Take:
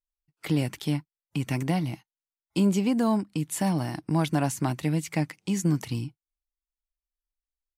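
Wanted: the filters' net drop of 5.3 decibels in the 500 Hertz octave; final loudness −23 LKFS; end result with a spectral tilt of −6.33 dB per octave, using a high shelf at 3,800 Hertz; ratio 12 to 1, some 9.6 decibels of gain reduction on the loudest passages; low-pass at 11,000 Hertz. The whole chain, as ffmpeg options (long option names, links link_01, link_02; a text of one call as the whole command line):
ffmpeg -i in.wav -af "lowpass=11000,equalizer=frequency=500:width_type=o:gain=-7.5,highshelf=frequency=3800:gain=-4.5,acompressor=threshold=-30dB:ratio=12,volume=13dB" out.wav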